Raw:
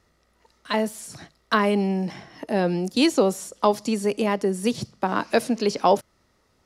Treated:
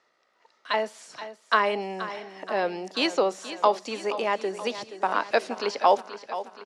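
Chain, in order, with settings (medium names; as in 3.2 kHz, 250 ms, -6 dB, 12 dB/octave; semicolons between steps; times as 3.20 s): high-pass 570 Hz 12 dB/octave; distance through air 110 m; feedback delay 476 ms, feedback 56%, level -13 dB; trim +1.5 dB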